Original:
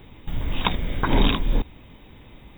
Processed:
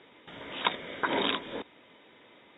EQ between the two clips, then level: cabinet simulation 480–5400 Hz, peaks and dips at 810 Hz -7 dB, 2.6 kHz -6 dB, 4.1 kHz -6 dB; band-stop 1.1 kHz, Q 13; 0.0 dB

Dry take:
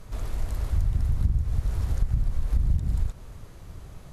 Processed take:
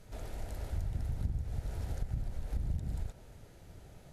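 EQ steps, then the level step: bass shelf 83 Hz -7 dB; dynamic bell 680 Hz, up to +5 dB, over -56 dBFS, Q 0.77; peaking EQ 1.1 kHz -14.5 dB 0.24 oct; -7.0 dB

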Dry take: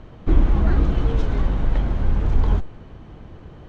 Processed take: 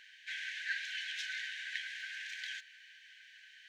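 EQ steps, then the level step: brick-wall FIR high-pass 1.5 kHz; +4.0 dB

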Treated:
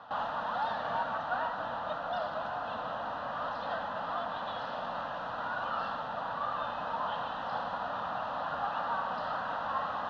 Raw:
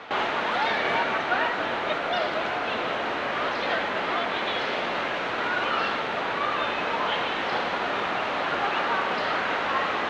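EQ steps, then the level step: distance through air 190 m; static phaser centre 920 Hz, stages 4; -4.5 dB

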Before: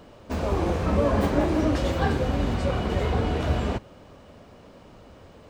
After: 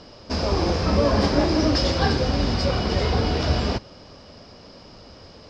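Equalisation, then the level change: resonant low-pass 5.1 kHz, resonance Q 11; +2.5 dB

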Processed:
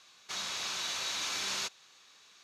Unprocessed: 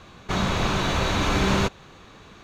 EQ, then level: Bessel low-pass 9.9 kHz, order 2; differentiator; peaking EQ 5.1 kHz +5.5 dB 0.42 oct; 0.0 dB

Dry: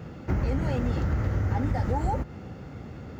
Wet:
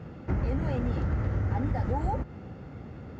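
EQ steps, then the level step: low-pass 2.8 kHz 6 dB/octave; -2.0 dB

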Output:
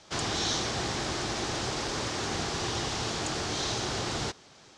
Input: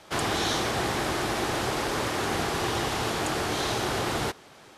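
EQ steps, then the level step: low-pass 6.6 kHz 24 dB/octave; tone controls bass +4 dB, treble +12 dB; -6.0 dB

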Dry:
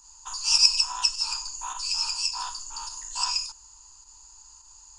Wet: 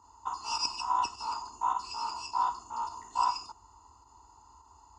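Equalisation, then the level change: Savitzky-Golay filter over 65 samples; high-pass 66 Hz 24 dB/octave; +9.0 dB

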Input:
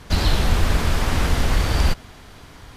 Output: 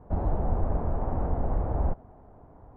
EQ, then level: four-pole ladder low-pass 910 Hz, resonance 40%; 0.0 dB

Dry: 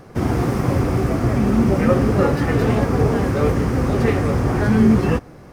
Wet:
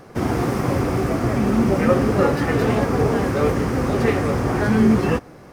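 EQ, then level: bass shelf 160 Hz -7.5 dB; +1.0 dB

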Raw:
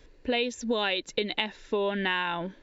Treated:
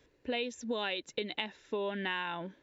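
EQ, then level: high-pass 73 Hz 12 dB/octave; peaking EQ 4.5 kHz -4 dB 0.25 oct; -7.0 dB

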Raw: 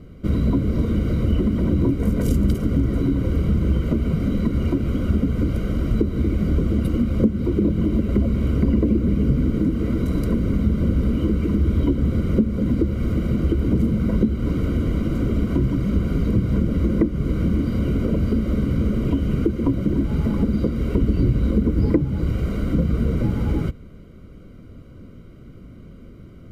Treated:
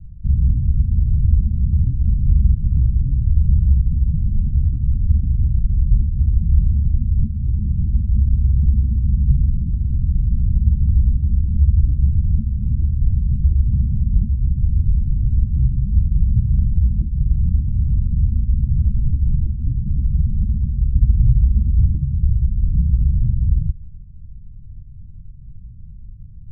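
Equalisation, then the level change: inverse Chebyshev low-pass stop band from 890 Hz, stop band 80 dB; tilt EQ -3.5 dB/octave; -7.0 dB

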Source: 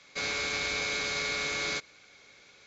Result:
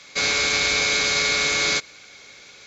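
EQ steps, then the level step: treble shelf 3.7 kHz +6.5 dB; +8.5 dB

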